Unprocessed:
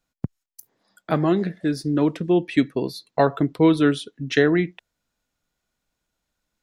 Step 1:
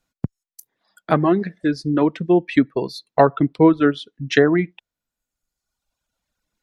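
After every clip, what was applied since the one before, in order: reverb removal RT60 1.3 s; treble ducked by the level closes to 1300 Hz, closed at -14 dBFS; dynamic EQ 1100 Hz, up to +4 dB, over -36 dBFS, Q 0.84; gain +3 dB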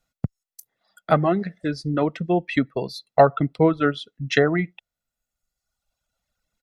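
comb 1.5 ms, depth 46%; gain -2 dB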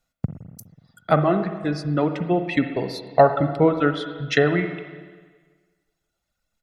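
spring tank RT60 1.5 s, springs 41/54/60 ms, chirp 65 ms, DRR 7.5 dB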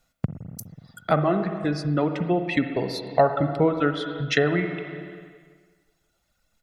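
compressor 1.5:1, threshold -42 dBFS, peak gain reduction 11.5 dB; gain +7 dB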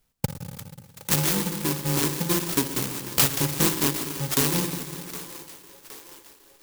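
FFT order left unsorted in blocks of 64 samples; split-band echo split 360 Hz, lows 0.185 s, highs 0.766 s, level -15 dB; clock jitter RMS 0.12 ms

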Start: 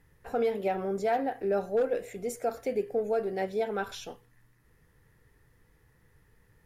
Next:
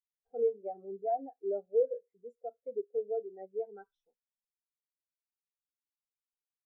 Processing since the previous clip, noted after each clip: spectral expander 2.5:1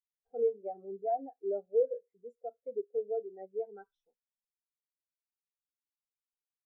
nothing audible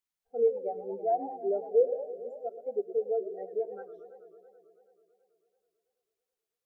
warbling echo 0.109 s, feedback 79%, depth 216 cents, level -14 dB; gain +4 dB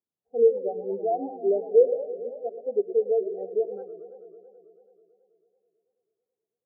Butterworth band-pass 250 Hz, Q 0.56; gain +7.5 dB

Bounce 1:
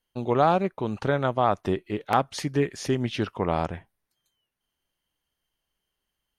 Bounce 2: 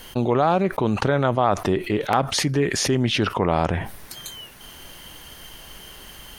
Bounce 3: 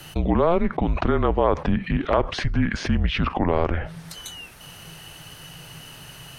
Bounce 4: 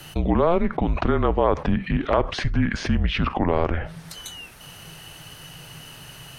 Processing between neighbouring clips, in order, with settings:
fast leveller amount 70%
frequency shift -170 Hz; treble ducked by the level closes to 2700 Hz, closed at -20 dBFS
reverb, pre-delay 5 ms, DRR 21.5 dB

